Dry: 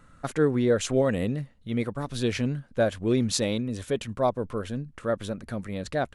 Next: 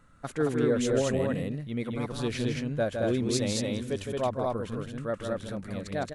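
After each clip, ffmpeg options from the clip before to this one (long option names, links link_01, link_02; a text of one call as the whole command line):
ffmpeg -i in.wav -af "aecho=1:1:160.3|221.6:0.501|0.794,volume=-5dB" out.wav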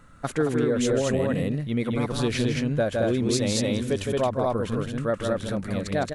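ffmpeg -i in.wav -af "acompressor=threshold=-27dB:ratio=6,volume=7.5dB" out.wav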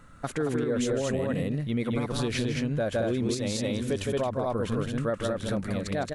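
ffmpeg -i in.wav -af "alimiter=limit=-19dB:level=0:latency=1:release=155" out.wav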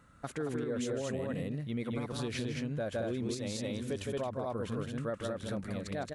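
ffmpeg -i in.wav -af "highpass=40,volume=-7.5dB" out.wav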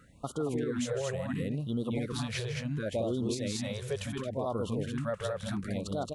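ffmpeg -i in.wav -af "afftfilt=real='re*(1-between(b*sr/1024,250*pow(2100/250,0.5+0.5*sin(2*PI*0.71*pts/sr))/1.41,250*pow(2100/250,0.5+0.5*sin(2*PI*0.71*pts/sr))*1.41))':imag='im*(1-between(b*sr/1024,250*pow(2100/250,0.5+0.5*sin(2*PI*0.71*pts/sr))/1.41,250*pow(2100/250,0.5+0.5*sin(2*PI*0.71*pts/sr))*1.41))':win_size=1024:overlap=0.75,volume=3.5dB" out.wav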